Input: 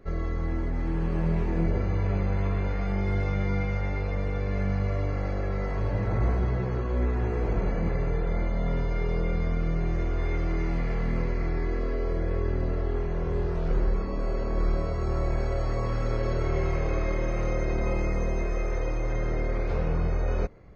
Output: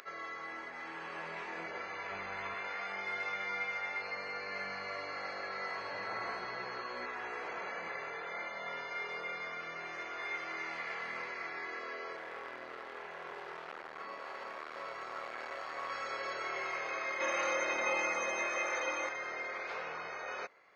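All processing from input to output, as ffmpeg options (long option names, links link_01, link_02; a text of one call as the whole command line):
ffmpeg -i in.wav -filter_complex "[0:a]asettb=1/sr,asplit=3[link_01][link_02][link_03];[link_01]atrim=end=2.114[link_04];[link_02]atrim=start=2.11:end=2.54,asetpts=PTS-STARTPTS,afade=type=in:duration=0.004:curve=qsin,afade=type=out:start_time=0.426:duration=0.004:curve=qsin,lowshelf=frequency=150:gain=11.5,bandreject=frequency=520:width=12[link_05];[link_03]atrim=start=2.536[link_06];[link_04][link_05]acrossfade=duration=0.004:curve1=hsin:curve2=qsin[link_07];[link_07][link_06]acrossfade=duration=0.004:curve1=qsin:curve2=hsin,asettb=1/sr,asplit=3[link_08][link_09][link_10];[link_08]atrim=end=4.014[link_11];[link_09]atrim=start=4.01:end=7.06,asetpts=PTS-STARTPTS,afade=type=in:duration=0.004:curve=qsin,afade=type=out:start_time=3.046:duration=0.004:curve=qsin,equalizer=frequency=160:width=0.63:gain=4.5,aeval=exprs='val(0)+0.002*sin(2*PI*4300*n/s)':channel_layout=same,bandreject=frequency=3500:width=12[link_12];[link_10]atrim=start=7.056[link_13];[link_11][link_12]acrossfade=duration=0.004:curve1=hsin:curve2=qsin[link_14];[link_14][link_13]acrossfade=duration=0.004:curve1=qsin:curve2=hsin,asettb=1/sr,asplit=3[link_15][link_16][link_17];[link_15]atrim=end=12.164[link_18];[link_16]atrim=start=12.16:end=15.9,asetpts=PTS-STARTPTS,afade=type=in:duration=0.004:curve=qsin,afade=type=out:start_time=3.736:duration=0.004:curve=qsin,highshelf=frequency=5100:gain=-9.5,asoftclip=type=hard:threshold=-25.5dB[link_19];[link_17]atrim=start=15.896[link_20];[link_18][link_19]acrossfade=duration=0.004:curve1=hsin:curve2=qsin[link_21];[link_21][link_20]acrossfade=duration=0.004:curve1=qsin:curve2=hsin,asettb=1/sr,asplit=3[link_22][link_23][link_24];[link_22]atrim=end=17.204[link_25];[link_23]atrim=start=17.2:end=19.09,asetpts=PTS-STARTPTS,afade=type=in:duration=0.004:curve=qsin,afade=type=out:start_time=1.886:duration=0.004:curve=qsin,aecho=1:1:3.5:0.63,atrim=end_sample=83349,acontrast=33[link_26];[link_24]atrim=start=19.086[link_27];[link_25][link_26]acrossfade=duration=0.004:curve1=hsin:curve2=qsin[link_28];[link_28][link_27]acrossfade=duration=0.004:curve1=qsin:curve2=hsin,highshelf=frequency=5300:gain=-9,acompressor=mode=upward:threshold=-38dB:ratio=2.5,highpass=1300,volume=4.5dB" out.wav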